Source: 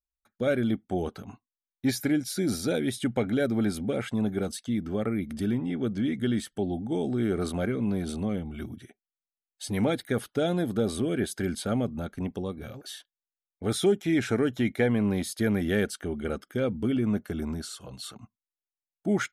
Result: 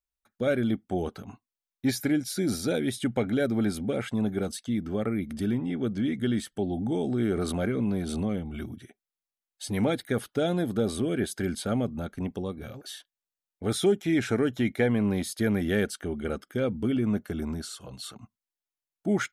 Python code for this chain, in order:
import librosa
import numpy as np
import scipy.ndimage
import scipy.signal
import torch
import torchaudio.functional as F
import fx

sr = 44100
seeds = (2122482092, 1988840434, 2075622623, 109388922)

y = fx.pre_swell(x, sr, db_per_s=38.0, at=(6.72, 8.73))